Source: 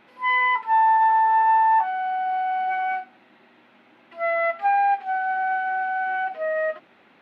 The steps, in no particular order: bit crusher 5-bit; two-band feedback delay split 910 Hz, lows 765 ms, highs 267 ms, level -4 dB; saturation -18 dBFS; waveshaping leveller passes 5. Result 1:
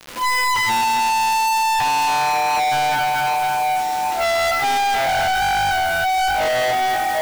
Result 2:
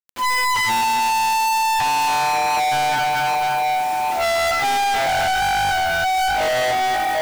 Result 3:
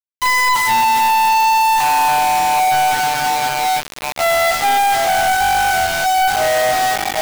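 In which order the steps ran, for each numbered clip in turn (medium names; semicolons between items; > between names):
two-band feedback delay > saturation > waveshaping leveller > bit crusher; two-band feedback delay > waveshaping leveller > bit crusher > saturation; saturation > two-band feedback delay > bit crusher > waveshaping leveller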